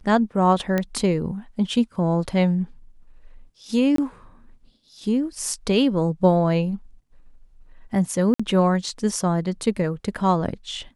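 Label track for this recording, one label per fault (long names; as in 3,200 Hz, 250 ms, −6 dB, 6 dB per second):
0.780000	0.780000	click −10 dBFS
3.960000	3.980000	drop-out 23 ms
8.340000	8.390000	drop-out 55 ms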